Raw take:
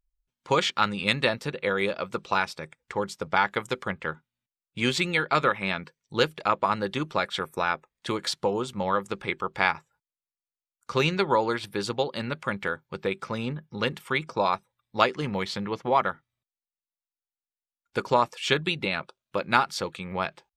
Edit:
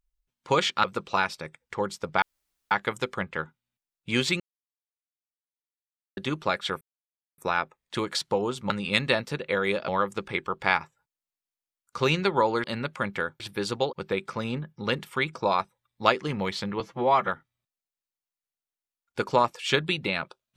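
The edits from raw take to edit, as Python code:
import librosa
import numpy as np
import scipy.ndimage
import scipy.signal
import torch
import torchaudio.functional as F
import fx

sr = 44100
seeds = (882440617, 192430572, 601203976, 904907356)

y = fx.edit(x, sr, fx.move(start_s=0.84, length_s=1.18, to_s=8.82),
    fx.insert_room_tone(at_s=3.4, length_s=0.49),
    fx.silence(start_s=5.09, length_s=1.77),
    fx.insert_silence(at_s=7.5, length_s=0.57),
    fx.move(start_s=11.58, length_s=0.53, to_s=12.87),
    fx.stretch_span(start_s=15.74, length_s=0.32, factor=1.5), tone=tone)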